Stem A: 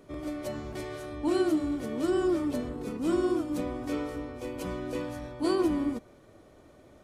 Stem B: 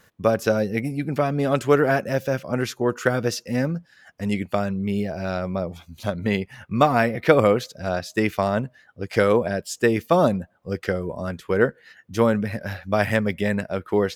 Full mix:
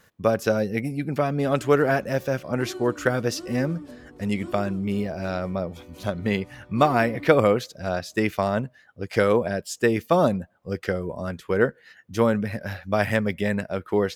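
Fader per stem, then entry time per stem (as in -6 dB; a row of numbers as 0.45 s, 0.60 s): -11.0 dB, -1.5 dB; 1.35 s, 0.00 s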